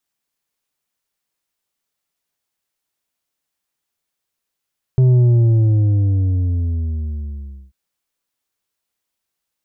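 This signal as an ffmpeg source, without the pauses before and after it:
-f lavfi -i "aevalsrc='0.335*clip((2.74-t)/2.6,0,1)*tanh(2*sin(2*PI*130*2.74/log(65/130)*(exp(log(65/130)*t/2.74)-1)))/tanh(2)':d=2.74:s=44100"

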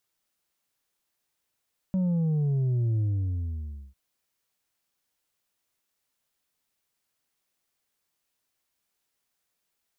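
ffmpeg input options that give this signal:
-f lavfi -i "aevalsrc='0.0708*clip((2-t)/0.95,0,1)*tanh(1.58*sin(2*PI*190*2/log(65/190)*(exp(log(65/190)*t/2)-1)))/tanh(1.58)':d=2:s=44100"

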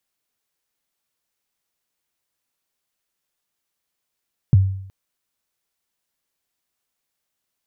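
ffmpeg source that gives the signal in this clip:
-f lavfi -i "aevalsrc='0.473*pow(10,-3*t/0.68)*sin(2*PI*(160*0.023/log(96/160)*(exp(log(96/160)*min(t,0.023)/0.023)-1)+96*max(t-0.023,0)))':d=0.37:s=44100"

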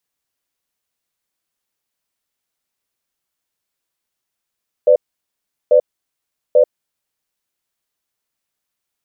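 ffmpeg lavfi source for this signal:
-f lavfi -i "aevalsrc='0.335*(sin(2*PI*504*t)+sin(2*PI*592*t))*clip(min(mod(t,0.84),0.09-mod(t,0.84))/0.005,0,1)':d=2.01:s=44100"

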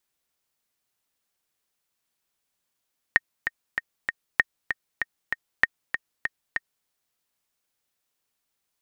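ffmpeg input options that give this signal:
-f lavfi -i "aevalsrc='pow(10,(-3.5-8.5*gte(mod(t,4*60/194),60/194))/20)*sin(2*PI*1850*mod(t,60/194))*exp(-6.91*mod(t,60/194)/0.03)':d=3.71:s=44100"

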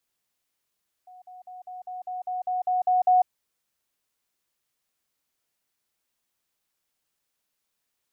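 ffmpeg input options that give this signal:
-f lavfi -i "aevalsrc='pow(10,(-45+3*floor(t/0.2))/20)*sin(2*PI*733*t)*clip(min(mod(t,0.2),0.15-mod(t,0.2))/0.005,0,1)':d=2.2:s=44100"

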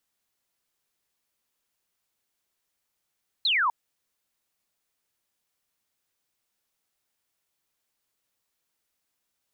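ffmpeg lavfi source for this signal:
-f lavfi -i "aevalsrc='0.0944*clip(t/0.002,0,1)*clip((0.25-t)/0.002,0,1)*sin(2*PI*4300*0.25/log(900/4300)*(exp(log(900/4300)*t/0.25)-1))':d=0.25:s=44100"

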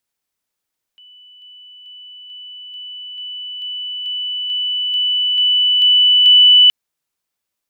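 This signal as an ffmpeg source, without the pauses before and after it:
-f lavfi -i "aevalsrc='pow(10,(-41+3*floor(t/0.44))/20)*sin(2*PI*2980*t)':d=5.72:s=44100"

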